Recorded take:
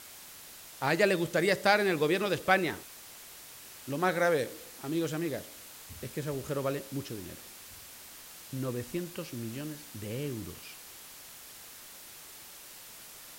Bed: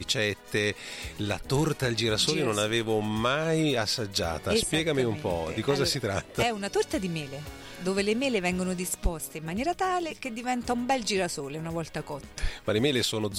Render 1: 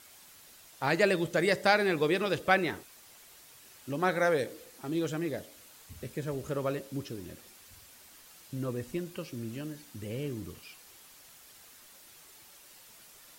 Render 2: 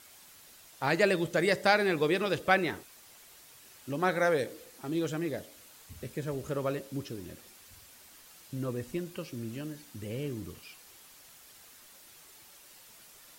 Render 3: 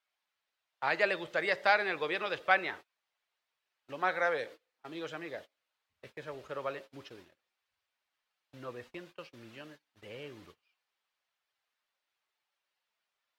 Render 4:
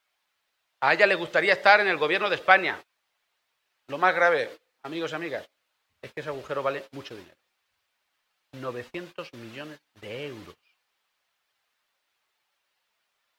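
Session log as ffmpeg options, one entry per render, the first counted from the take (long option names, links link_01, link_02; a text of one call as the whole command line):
ffmpeg -i in.wav -af "afftdn=noise_reduction=7:noise_floor=-49" out.wav
ffmpeg -i in.wav -af anull out.wav
ffmpeg -i in.wav -filter_complex "[0:a]agate=range=-25dB:threshold=-41dB:ratio=16:detection=peak,acrossover=split=540 4300:gain=0.141 1 0.0891[link_01][link_02][link_03];[link_01][link_02][link_03]amix=inputs=3:normalize=0" out.wav
ffmpeg -i in.wav -af "volume=9.5dB,alimiter=limit=-3dB:level=0:latency=1" out.wav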